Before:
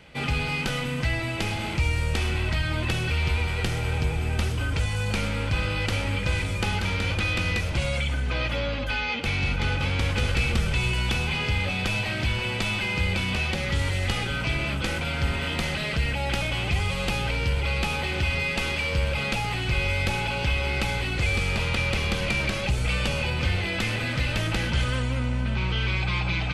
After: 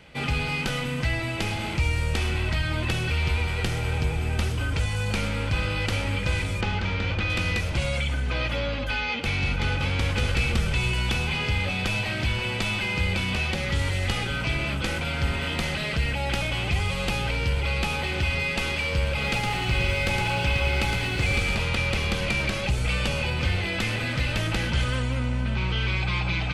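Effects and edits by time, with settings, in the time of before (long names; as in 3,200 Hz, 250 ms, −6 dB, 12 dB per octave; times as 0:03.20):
0:06.61–0:07.30: high-frequency loss of the air 120 metres
0:19.10–0:21.55: feedback echo at a low word length 113 ms, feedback 35%, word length 9 bits, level −4.5 dB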